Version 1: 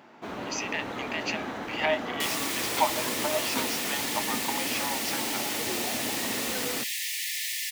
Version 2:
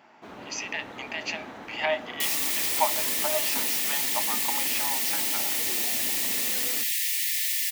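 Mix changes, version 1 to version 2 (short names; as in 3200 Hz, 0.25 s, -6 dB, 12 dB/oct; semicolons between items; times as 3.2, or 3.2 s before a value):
first sound -7.0 dB; second sound: add high shelf 10000 Hz +10.5 dB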